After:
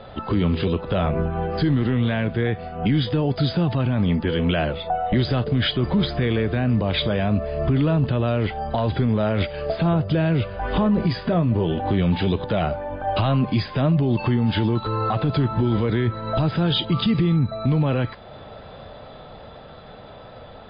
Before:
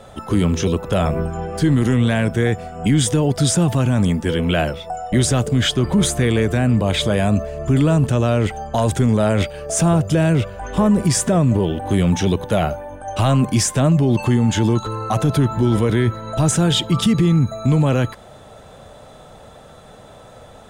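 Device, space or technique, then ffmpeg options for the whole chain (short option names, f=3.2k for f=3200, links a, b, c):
low-bitrate web radio: -filter_complex "[0:a]asettb=1/sr,asplit=3[a][b][c];[a]atrim=end=10.844[d];[b]atrim=start=10.84:end=11.8,asetpts=PTS-STARTPTS,afade=t=in:d=0.004:c=qsin,afade=t=out:st=0.956:d=0.004:c=qsin,asplit=2[e][f];[f]adelay=18,volume=-11dB[g];[e][g]amix=inputs=2:normalize=0,atrim=end_sample=42336[h];[c]atrim=start=11.796[i];[d][h]acrossfade=d=0.004:c1=hsin:c2=qsin[j];[j][i]acrossfade=d=0.004:c1=qsin:c2=hsin,dynaudnorm=f=660:g=13:m=6dB,alimiter=limit=-13.5dB:level=0:latency=1:release=351,volume=1.5dB" -ar 11025 -c:a libmp3lame -b:a 24k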